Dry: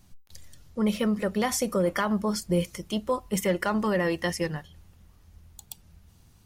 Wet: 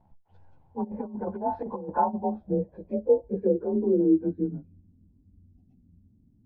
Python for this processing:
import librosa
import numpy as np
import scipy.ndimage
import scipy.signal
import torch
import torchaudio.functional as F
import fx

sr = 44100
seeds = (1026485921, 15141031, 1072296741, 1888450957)

y = fx.partial_stretch(x, sr, pct=90)
y = fx.notch(y, sr, hz=1200.0, q=6.4)
y = fx.env_lowpass_down(y, sr, base_hz=700.0, full_db=-23.0)
y = fx.over_compress(y, sr, threshold_db=-30.0, ratio=-0.5, at=(0.83, 2.13), fade=0.02)
y = fx.filter_sweep_lowpass(y, sr, from_hz=860.0, to_hz=260.0, start_s=1.99, end_s=4.7, q=5.5)
y = y * librosa.db_to_amplitude(-3.0)